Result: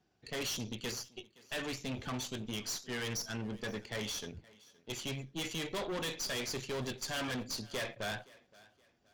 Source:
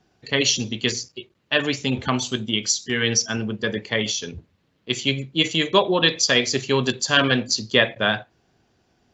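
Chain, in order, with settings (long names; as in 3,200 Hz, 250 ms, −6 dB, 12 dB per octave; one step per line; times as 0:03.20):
tube saturation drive 27 dB, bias 0.75
feedback echo with a high-pass in the loop 520 ms, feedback 32%, high-pass 190 Hz, level −22 dB
level −7.5 dB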